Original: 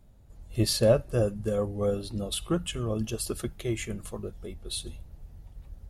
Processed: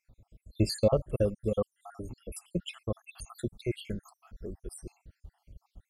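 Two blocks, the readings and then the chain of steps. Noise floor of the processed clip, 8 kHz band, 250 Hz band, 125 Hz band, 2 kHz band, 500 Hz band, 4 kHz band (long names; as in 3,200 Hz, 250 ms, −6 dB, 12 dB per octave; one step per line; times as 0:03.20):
−84 dBFS, −10.5 dB, −4.0 dB, −4.0 dB, −7.5 dB, −3.5 dB, −8.5 dB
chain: time-frequency cells dropped at random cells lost 71%
high-shelf EQ 6,900 Hz −7.5 dB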